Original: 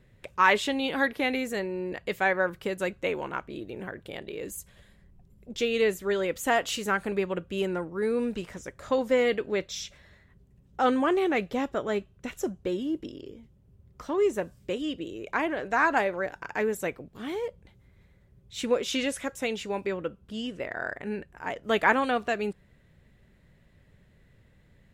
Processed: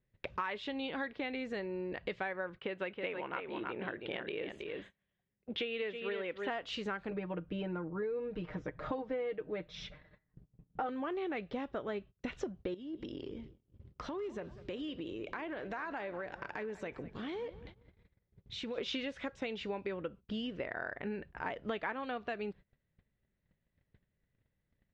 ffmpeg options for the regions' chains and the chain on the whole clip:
-filter_complex "[0:a]asettb=1/sr,asplit=3[a][b][c];[a]atrim=end=2.574[d];[b]atrim=start=2.57:end=6.49,asetpts=PTS-STARTPTS,afade=t=in:d=0.004:c=qsin,afade=t=out:st=3.916:d=0.004:c=qsin,highpass=f=270:p=1,highshelf=f=4.2k:t=q:w=1.5:g=-11,aecho=1:1:321:0.422,atrim=end_sample=172872[e];[c]atrim=start=6.486[f];[d][e]acrossfade=d=0.004:c1=hsin:c2=qsin[g];[g][f]acrossfade=d=0.004:c1=qsin:c2=hsin,asettb=1/sr,asplit=3[h][i][j];[h]atrim=end=7.104[k];[i]atrim=start=7.1:end=10.89,asetpts=PTS-STARTPTS,afade=t=in:d=0.004:c=qsin,afade=t=out:st=3.786:d=0.004:c=qsin,lowpass=f=1.3k:p=1,aecho=1:1:6.5:0.77,atrim=end_sample=167139[l];[j]atrim=start=10.886[m];[k][l]acrossfade=d=0.004:c1=hsin:c2=qsin[n];[n][m]acrossfade=d=0.004:c1=qsin:c2=hsin,asettb=1/sr,asplit=3[o][p][q];[o]atrim=end=12.744[r];[p]atrim=start=12.74:end=18.78,asetpts=PTS-STARTPTS,afade=t=in:d=0.004:c=qsin,afade=t=out:st=6.036:d=0.004:c=qsin,highshelf=f=6k:g=6.5,acompressor=threshold=-42dB:ratio=4:attack=3.2:release=140:knee=1:detection=peak,asplit=2[s][t];[t]adelay=196,lowpass=f=4.7k:p=1,volume=-16.5dB,asplit=2[u][v];[v]adelay=196,lowpass=f=4.7k:p=1,volume=0.55,asplit=2[w][x];[x]adelay=196,lowpass=f=4.7k:p=1,volume=0.55,asplit=2[y][z];[z]adelay=196,lowpass=f=4.7k:p=1,volume=0.55,asplit=2[aa][ab];[ab]adelay=196,lowpass=f=4.7k:p=1,volume=0.55[ac];[s][u][w][y][aa][ac]amix=inputs=6:normalize=0,atrim=end_sample=266364[ad];[q]atrim=start=18.776[ae];[r][ad]acrossfade=d=0.004:c1=hsin:c2=qsin[af];[af][ae]acrossfade=d=0.004:c1=qsin:c2=hsin,lowpass=f=4.4k:w=0.5412,lowpass=f=4.4k:w=1.3066,acompressor=threshold=-39dB:ratio=8,agate=range=-26dB:threshold=-54dB:ratio=16:detection=peak,volume=3.5dB"

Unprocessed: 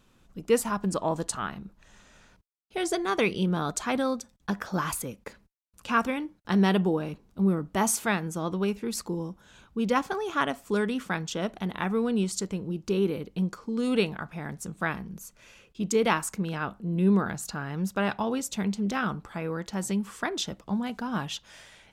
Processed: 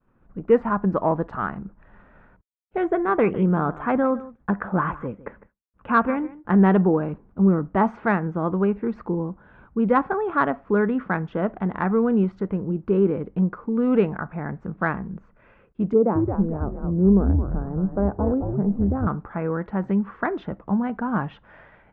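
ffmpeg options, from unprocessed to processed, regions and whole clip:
-filter_complex "[0:a]asettb=1/sr,asplit=3[a][b][c];[a]atrim=end=2.854[d];[b]atrim=start=2.85:end=6.7,asetpts=PTS-STARTPTS,afade=t=in:d=0.004:c=qsin,afade=t=out:st=3.846:d=0.004:c=qsin,asuperstop=centerf=4800:order=4:qfactor=1.6,aecho=1:1:154:0.126,atrim=end_sample=169785[e];[c]atrim=start=6.696[f];[d][e]acrossfade=d=0.004:c1=hsin:c2=qsin[g];[g][f]acrossfade=d=0.004:c1=qsin:c2=hsin,asettb=1/sr,asplit=3[h][i][j];[h]atrim=end=15.934[k];[i]atrim=start=15.93:end=19.07,asetpts=PTS-STARTPTS,afade=t=in:d=0.004:c=qsin,afade=t=out:st=3.136:d=0.004:c=qsin,asuperpass=centerf=320:order=4:qfactor=0.64,asplit=6[l][m][n][o][p][q];[m]adelay=218,afreqshift=-120,volume=-4.5dB[r];[n]adelay=436,afreqshift=-240,volume=-12dB[s];[o]adelay=654,afreqshift=-360,volume=-19.6dB[t];[p]adelay=872,afreqshift=-480,volume=-27.1dB[u];[q]adelay=1090,afreqshift=-600,volume=-34.6dB[v];[l][r][s][t][u][v]amix=inputs=6:normalize=0,atrim=end_sample=138474[w];[j]atrim=start=19.066[x];[k][w]acrossfade=d=0.004:c1=hsin:c2=qsin[y];[y][x]acrossfade=d=0.004:c1=qsin:c2=hsin,lowpass=f=1.7k:w=0.5412,lowpass=f=1.7k:w=1.3066,agate=range=-33dB:threshold=-56dB:ratio=3:detection=peak,acontrast=68"

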